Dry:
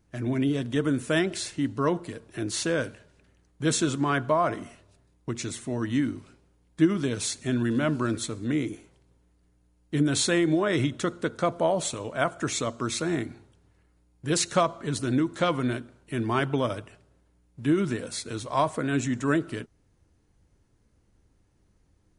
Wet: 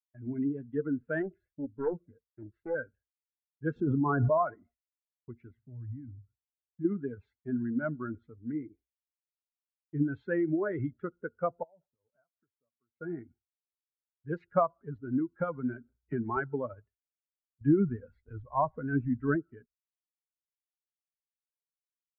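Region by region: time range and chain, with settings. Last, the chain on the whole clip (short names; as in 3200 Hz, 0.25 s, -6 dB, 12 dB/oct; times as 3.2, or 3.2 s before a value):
1.22–2.75 Butterworth band-stop 870 Hz, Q 3.8 + high shelf 2000 Hz -9 dB + Doppler distortion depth 0.64 ms
3.76–4.38 bell 2100 Hz -14.5 dB 1.1 oct + fast leveller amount 100%
5.57–6.85 bell 110 Hz +14 dB 0.83 oct + compressor 2:1, threshold -35 dBFS
11.63–12.95 bell 4300 Hz -6 dB 2.3 oct + compressor 20:1, threshold -36 dBFS
15.38–16.37 LPF 8300 Hz + three-band squash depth 100%
17.61–19.36 low shelf 110 Hz +11.5 dB + mismatched tape noise reduction encoder only
whole clip: per-bin expansion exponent 2; Chebyshev low-pass 1600 Hz, order 4; expander -55 dBFS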